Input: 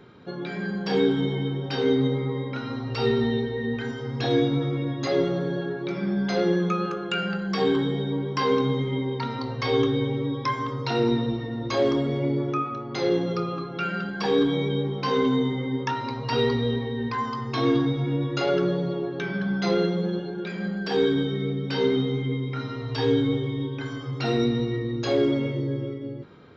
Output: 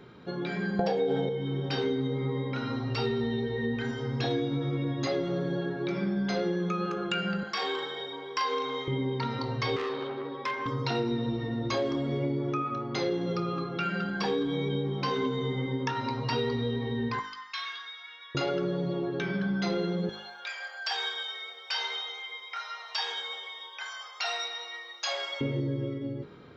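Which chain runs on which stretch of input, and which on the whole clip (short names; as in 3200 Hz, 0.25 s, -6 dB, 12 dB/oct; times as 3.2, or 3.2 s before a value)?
0.79–1.29 band shelf 610 Hz +14.5 dB 1.1 oct + comb 5.9 ms, depth 33% + fast leveller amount 70%
7.43–8.88 HPF 750 Hz + doubler 38 ms -4 dB
9.76–10.66 BPF 390–3500 Hz + comb 5.2 ms, depth 45% + core saturation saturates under 1700 Hz
17.19–18.35 HPF 1400 Hz 24 dB/oct + high shelf 5800 Hz -6.5 dB
20.09–25.41 steep high-pass 690 Hz + high shelf 4200 Hz +9.5 dB + notch 4000 Hz, Q 13
whole clip: de-hum 51.78 Hz, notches 33; compressor, threshold -26 dBFS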